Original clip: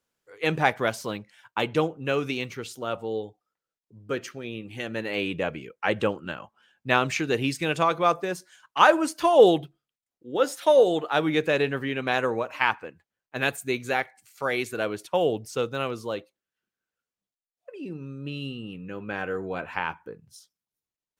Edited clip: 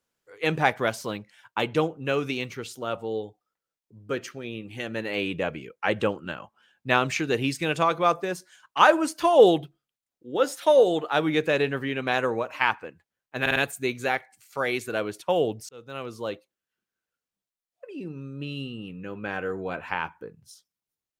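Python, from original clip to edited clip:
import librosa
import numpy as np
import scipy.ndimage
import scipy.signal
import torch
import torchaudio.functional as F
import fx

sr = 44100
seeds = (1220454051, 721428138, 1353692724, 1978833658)

y = fx.edit(x, sr, fx.stutter(start_s=13.41, slice_s=0.05, count=4),
    fx.fade_in_span(start_s=15.54, length_s=0.62), tone=tone)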